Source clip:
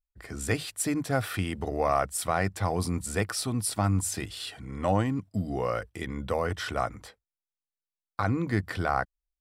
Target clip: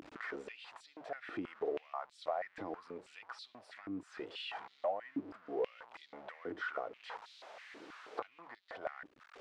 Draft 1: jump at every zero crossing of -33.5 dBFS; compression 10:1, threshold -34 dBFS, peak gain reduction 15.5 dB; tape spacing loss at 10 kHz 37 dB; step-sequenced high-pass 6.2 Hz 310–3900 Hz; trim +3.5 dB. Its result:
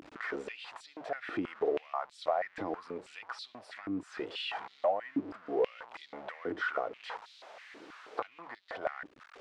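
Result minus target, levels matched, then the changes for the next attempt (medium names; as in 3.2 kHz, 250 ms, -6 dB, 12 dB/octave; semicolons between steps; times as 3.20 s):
compression: peak gain reduction -6.5 dB
change: compression 10:1, threshold -41 dBFS, peak gain reduction 22 dB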